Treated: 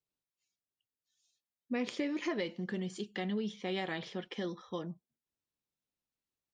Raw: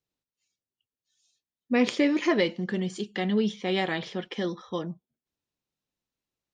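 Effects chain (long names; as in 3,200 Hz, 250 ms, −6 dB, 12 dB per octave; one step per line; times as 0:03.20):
downward compressor 3 to 1, threshold −26 dBFS, peak gain reduction 6.5 dB
level −6.5 dB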